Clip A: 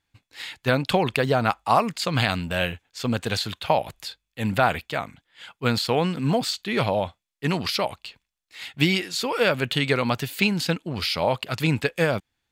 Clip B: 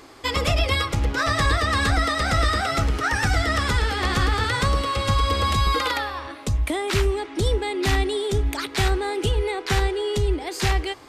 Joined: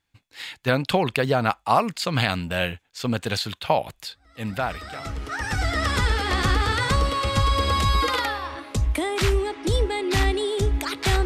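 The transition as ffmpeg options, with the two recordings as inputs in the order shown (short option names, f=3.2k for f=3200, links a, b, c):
-filter_complex "[0:a]apad=whole_dur=11.25,atrim=end=11.25,atrim=end=5.97,asetpts=PTS-STARTPTS[a];[1:a]atrim=start=1.75:end=8.97,asetpts=PTS-STARTPTS[b];[a][b]acrossfade=d=1.94:c1=qua:c2=qua"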